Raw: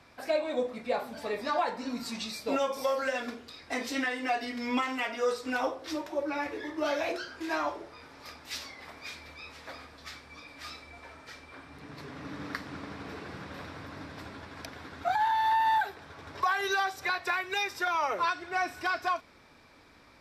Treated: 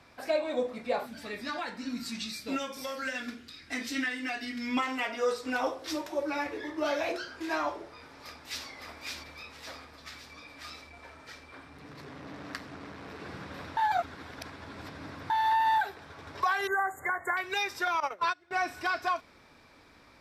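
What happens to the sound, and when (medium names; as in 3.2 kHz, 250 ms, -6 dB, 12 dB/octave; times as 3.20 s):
1.06–4.77 s: high-order bell 680 Hz -10 dB
5.66–6.43 s: treble shelf 4.1 kHz +6.5 dB
8.00–8.67 s: echo throw 560 ms, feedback 55%, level -3.5 dB
9.43–13.20 s: transformer saturation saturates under 3.4 kHz
13.77–15.30 s: reverse
16.67–17.37 s: brick-wall FIR band-stop 2.2–6.6 kHz
18.00–18.51 s: gate -30 dBFS, range -20 dB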